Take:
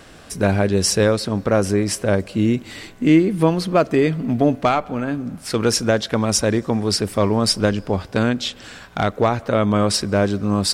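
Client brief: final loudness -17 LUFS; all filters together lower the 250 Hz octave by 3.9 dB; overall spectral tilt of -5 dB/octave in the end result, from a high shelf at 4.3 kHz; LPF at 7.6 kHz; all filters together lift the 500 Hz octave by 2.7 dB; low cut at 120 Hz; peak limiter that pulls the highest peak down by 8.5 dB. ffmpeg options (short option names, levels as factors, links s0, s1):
-af "highpass=120,lowpass=7600,equalizer=f=250:t=o:g=-6.5,equalizer=f=500:t=o:g=5,highshelf=f=4300:g=-6.5,volume=2,alimiter=limit=0.596:level=0:latency=1"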